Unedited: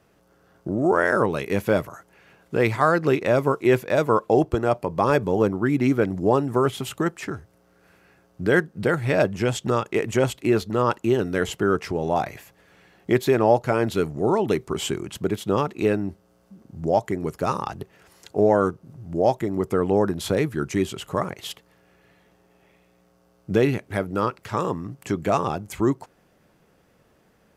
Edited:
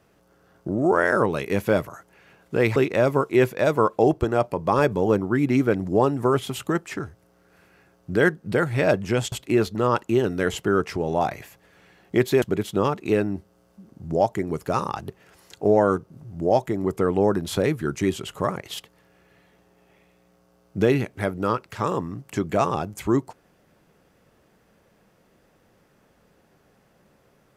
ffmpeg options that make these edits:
-filter_complex "[0:a]asplit=4[s0][s1][s2][s3];[s0]atrim=end=2.762[s4];[s1]atrim=start=3.068:end=9.632[s5];[s2]atrim=start=10.268:end=13.372[s6];[s3]atrim=start=15.148[s7];[s4][s5]acrossfade=d=0.004:c1=hsin:c2=hsin[s8];[s8][s6]acrossfade=d=0.004:c1=hsin:c2=hsin[s9];[s9][s7]acrossfade=d=0.004:c1=hsin:c2=hsin"

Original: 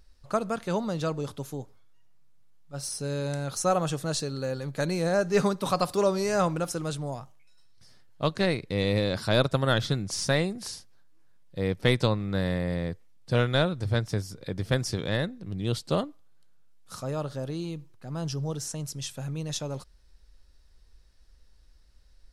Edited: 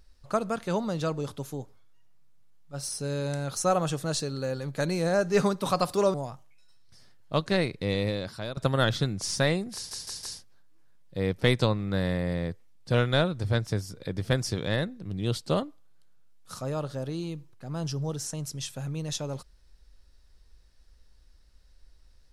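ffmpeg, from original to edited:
-filter_complex "[0:a]asplit=6[s0][s1][s2][s3][s4][s5];[s0]atrim=end=6.142[s6];[s1]atrim=start=7.028:end=9.46,asetpts=PTS-STARTPTS,afade=t=out:st=1.662:d=0.77:silence=0.11885[s7];[s2]atrim=start=9.46:end=10.802,asetpts=PTS-STARTPTS,afade=t=in:d=0.004:c=hsin:silence=0.11885[s8];[s3]atrim=start=10.638:end=10.802[s9];[s4]atrim=start=10.638:end=10.802[s10];[s5]atrim=start=10.638[s11];[s7][s8]concat=n=2:v=0:a=1[s12];[s6][s12]acrossfade=d=0.004:c1=hsin:c2=hsin[s13];[s13][s9]acrossfade=d=0.004:c1=hsin:c2=hsin[s14];[s14][s10]acrossfade=d=0.004:c1=hsin:c2=hsin[s15];[s15][s11]acrossfade=d=0.004:c1=hsin:c2=hsin"

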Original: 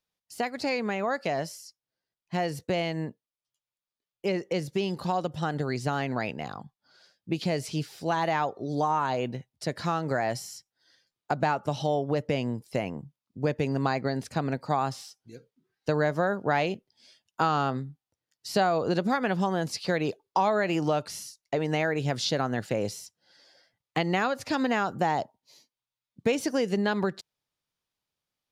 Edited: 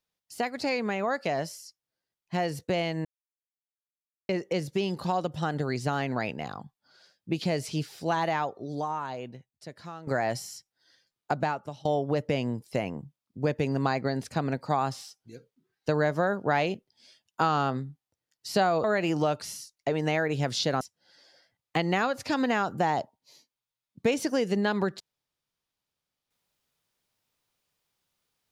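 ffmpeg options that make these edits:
-filter_complex "[0:a]asplit=7[s0][s1][s2][s3][s4][s5][s6];[s0]atrim=end=3.05,asetpts=PTS-STARTPTS,afade=t=out:st=3.046:d=0.004:c=hsin[s7];[s1]atrim=start=3.05:end=4.29,asetpts=PTS-STARTPTS,volume=0[s8];[s2]atrim=start=4.29:end=10.07,asetpts=PTS-STARTPTS,afade=t=in:d=0.004:c=hsin,afade=t=out:st=3.86:d=1.92:c=qua:silence=0.211349[s9];[s3]atrim=start=10.07:end=11.85,asetpts=PTS-STARTPTS,afade=t=in:d=0.004:c=hsin:silence=0.211349,afade=t=out:st=1.24:d=0.54:silence=0.0749894[s10];[s4]atrim=start=11.85:end=18.842,asetpts=PTS-STARTPTS,afade=t=in:d=0.004:c=hsin:silence=0.0749894[s11];[s5]atrim=start=20.498:end=22.472[s12];[s6]atrim=start=23.018[s13];[s7][s8][s9][s10][s11]concat=n=5:v=0:a=1[s14];[s14][s12]acrossfade=d=0.004:c1=hsin:c2=hsin[s15];[s15][s13]acrossfade=d=0.004:c1=hsin:c2=hsin"

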